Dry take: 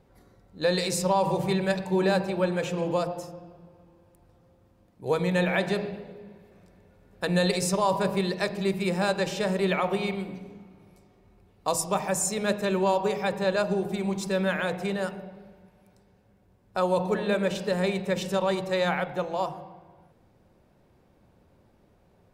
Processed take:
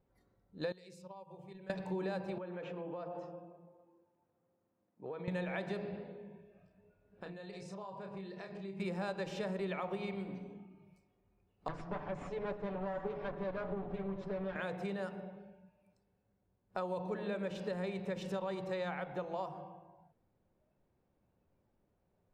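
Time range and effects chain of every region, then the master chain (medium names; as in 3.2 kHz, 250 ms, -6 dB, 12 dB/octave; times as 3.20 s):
0.72–1.70 s: gate -22 dBFS, range -19 dB + compression 10:1, threshold -41 dBFS
2.38–5.28 s: compression 16:1, threshold -32 dBFS + band-pass 190–2800 Hz
6.27–8.80 s: distance through air 60 m + compression 20:1, threshold -37 dBFS + doubling 31 ms -6 dB
11.68–14.56 s: comb filter that takes the minimum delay 6.9 ms + tape spacing loss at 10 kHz 32 dB + delay 727 ms -17.5 dB
whole clip: spectral noise reduction 11 dB; low-pass 2.6 kHz 6 dB/octave; compression 4:1, threshold -31 dBFS; trim -5 dB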